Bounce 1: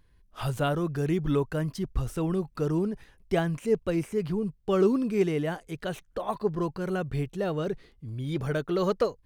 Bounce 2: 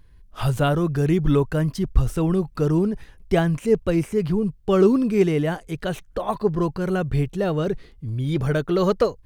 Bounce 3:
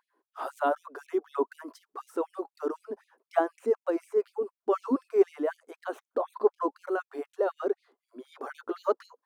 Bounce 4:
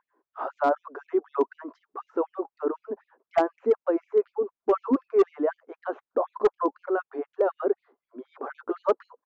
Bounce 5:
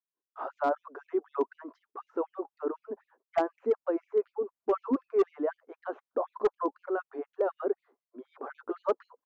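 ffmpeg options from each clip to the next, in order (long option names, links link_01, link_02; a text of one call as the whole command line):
ffmpeg -i in.wav -af "lowshelf=frequency=120:gain=7,volume=5.5dB" out.wav
ffmpeg -i in.wav -af "aphaser=in_gain=1:out_gain=1:delay=3:decay=0.21:speed=0.31:type=sinusoidal,highshelf=frequency=1700:width_type=q:width=1.5:gain=-12.5,afftfilt=real='re*gte(b*sr/1024,230*pow(2300/230,0.5+0.5*sin(2*PI*4*pts/sr)))':imag='im*gte(b*sr/1024,230*pow(2300/230,0.5+0.5*sin(2*PI*4*pts/sr)))':win_size=1024:overlap=0.75,volume=-3.5dB" out.wav
ffmpeg -i in.wav -af "lowpass=1600,aresample=16000,volume=17dB,asoftclip=hard,volume=-17dB,aresample=44100,volume=4dB" out.wav
ffmpeg -i in.wav -af "agate=range=-33dB:threshold=-56dB:ratio=3:detection=peak,volume=-5dB" out.wav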